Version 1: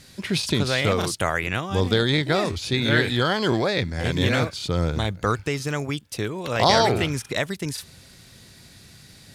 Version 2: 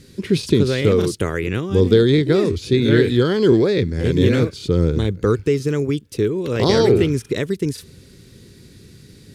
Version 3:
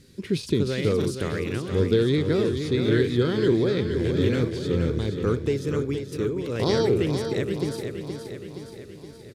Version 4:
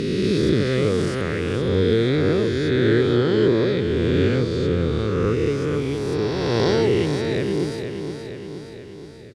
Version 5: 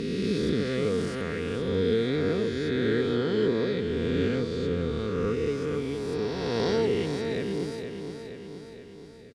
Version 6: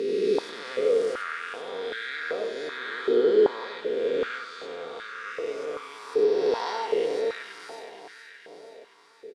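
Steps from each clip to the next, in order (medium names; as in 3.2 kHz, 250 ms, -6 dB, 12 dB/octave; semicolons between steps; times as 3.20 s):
resonant low shelf 540 Hz +8 dB, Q 3; trim -2.5 dB
feedback delay 471 ms, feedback 58%, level -7.5 dB; trim -7.5 dB
reverse spectral sustain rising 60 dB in 2.78 s; distance through air 53 m
comb 4.3 ms, depth 41%; trim -7.5 dB
delay 94 ms -7 dB; step-sequenced high-pass 2.6 Hz 420–1600 Hz; trim -3 dB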